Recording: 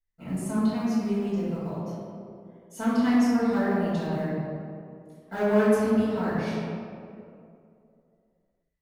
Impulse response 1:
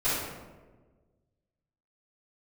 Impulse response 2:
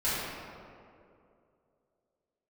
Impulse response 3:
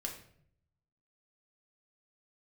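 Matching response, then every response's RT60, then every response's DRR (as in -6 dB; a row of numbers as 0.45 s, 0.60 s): 2; 1.4 s, 2.5 s, 0.65 s; -16.5 dB, -13.0 dB, -0.5 dB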